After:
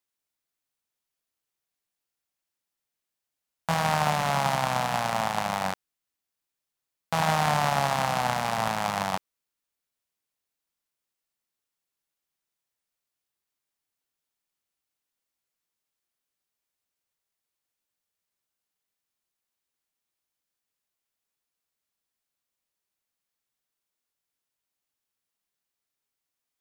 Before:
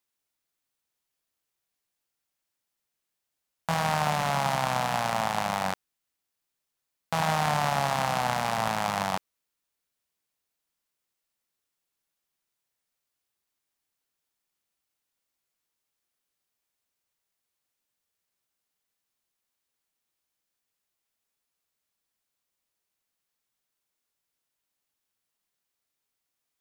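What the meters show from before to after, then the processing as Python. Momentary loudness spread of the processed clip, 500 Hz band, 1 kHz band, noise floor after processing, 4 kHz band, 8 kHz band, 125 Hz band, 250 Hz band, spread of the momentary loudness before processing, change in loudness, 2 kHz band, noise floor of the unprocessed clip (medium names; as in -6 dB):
8 LU, +1.0 dB, +1.0 dB, under -85 dBFS, +1.0 dB, +1.0 dB, +1.5 dB, +1.0 dB, 6 LU, +1.0 dB, +1.0 dB, -84 dBFS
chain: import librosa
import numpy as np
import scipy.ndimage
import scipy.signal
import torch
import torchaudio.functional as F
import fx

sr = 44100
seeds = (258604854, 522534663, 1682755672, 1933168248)

y = fx.upward_expand(x, sr, threshold_db=-35.0, expansion=1.5)
y = y * 10.0 ** (2.5 / 20.0)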